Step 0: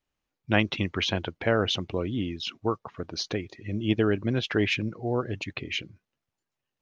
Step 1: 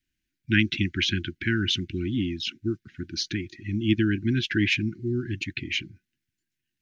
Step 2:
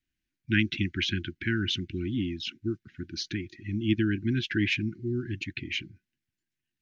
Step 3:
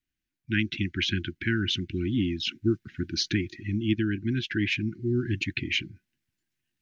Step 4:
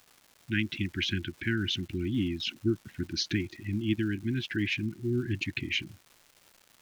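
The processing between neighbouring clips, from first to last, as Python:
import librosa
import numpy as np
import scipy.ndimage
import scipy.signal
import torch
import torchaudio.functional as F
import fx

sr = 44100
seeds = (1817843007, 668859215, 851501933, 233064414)

y1 = scipy.signal.sosfilt(scipy.signal.cheby1(5, 1.0, [360.0, 1500.0], 'bandstop', fs=sr, output='sos'), x)
y1 = F.gain(torch.from_numpy(y1), 3.5).numpy()
y2 = fx.high_shelf(y1, sr, hz=6300.0, db=-6.5)
y2 = F.gain(torch.from_numpy(y2), -3.0).numpy()
y3 = fx.rider(y2, sr, range_db=5, speed_s=0.5)
y3 = F.gain(torch.from_numpy(y3), 2.0).numpy()
y4 = fx.dmg_crackle(y3, sr, seeds[0], per_s=460.0, level_db=-42.0)
y4 = F.gain(torch.from_numpy(y4), -3.0).numpy()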